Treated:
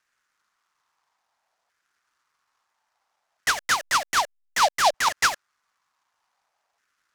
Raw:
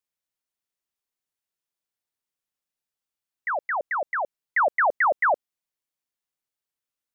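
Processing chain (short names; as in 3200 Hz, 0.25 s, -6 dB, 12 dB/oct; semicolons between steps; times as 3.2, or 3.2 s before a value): three-band isolator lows -21 dB, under 300 Hz, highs -23 dB, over 2400 Hz; overdrive pedal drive 33 dB, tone 2300 Hz, clips at -16.5 dBFS; LFO high-pass saw down 0.59 Hz 660–1600 Hz; 3.49–4.94 backlash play -38.5 dBFS; noise-modulated delay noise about 3800 Hz, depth 0.065 ms; gain -3 dB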